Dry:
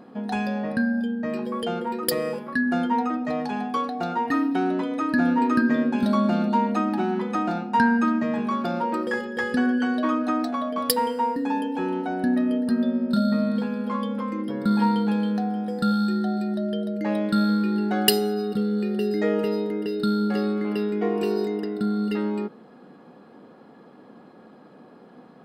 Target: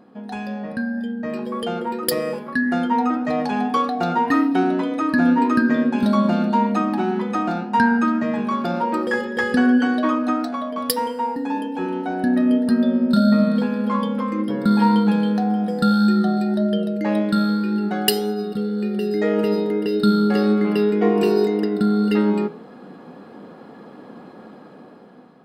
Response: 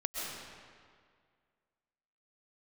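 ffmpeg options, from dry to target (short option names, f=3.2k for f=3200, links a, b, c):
-af "dynaudnorm=f=310:g=7:m=11.5dB,flanger=delay=9.3:depth=2.8:regen=87:speed=1.8:shape=sinusoidal,volume=1dB"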